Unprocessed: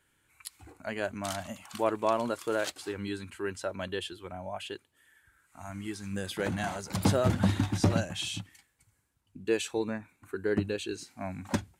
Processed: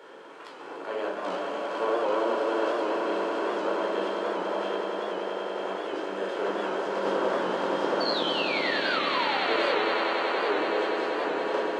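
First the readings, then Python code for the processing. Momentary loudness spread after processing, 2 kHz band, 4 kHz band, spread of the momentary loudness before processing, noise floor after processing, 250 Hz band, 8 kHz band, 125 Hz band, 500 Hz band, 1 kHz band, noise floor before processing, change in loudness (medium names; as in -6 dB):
7 LU, +9.0 dB, +7.5 dB, 14 LU, -42 dBFS, 0.0 dB, under -10 dB, -17.5 dB, +7.0 dB, +9.5 dB, -72 dBFS, +5.0 dB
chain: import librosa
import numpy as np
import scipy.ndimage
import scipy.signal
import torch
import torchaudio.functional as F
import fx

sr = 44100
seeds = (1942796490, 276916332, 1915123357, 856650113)

p1 = fx.bin_compress(x, sr, power=0.4)
p2 = fx.quant_dither(p1, sr, seeds[0], bits=8, dither='none')
p3 = fx.spacing_loss(p2, sr, db_at_10k=26)
p4 = fx.spec_paint(p3, sr, seeds[1], shape='fall', start_s=8.0, length_s=1.76, low_hz=460.0, high_hz=4600.0, level_db=-29.0)
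p5 = scipy.signal.sosfilt(scipy.signal.butter(4, 350.0, 'highpass', fs=sr, output='sos'), p4)
p6 = p5 + fx.echo_swell(p5, sr, ms=95, loudest=8, wet_db=-8.5, dry=0)
p7 = fx.room_shoebox(p6, sr, seeds[2], volume_m3=840.0, walls='furnished', distance_m=4.4)
p8 = fx.record_warp(p7, sr, rpm=78.0, depth_cents=100.0)
y = p8 * librosa.db_to_amplitude(-8.5)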